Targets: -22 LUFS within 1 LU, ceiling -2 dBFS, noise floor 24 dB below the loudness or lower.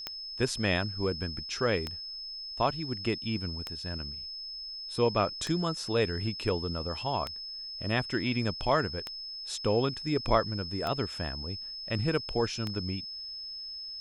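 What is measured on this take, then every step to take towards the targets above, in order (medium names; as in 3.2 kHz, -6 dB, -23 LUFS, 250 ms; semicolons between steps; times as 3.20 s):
clicks found 8; steady tone 5.2 kHz; tone level -38 dBFS; loudness -31.5 LUFS; peak level -10.5 dBFS; loudness target -22.0 LUFS
-> de-click; band-stop 5.2 kHz, Q 30; trim +9.5 dB; peak limiter -2 dBFS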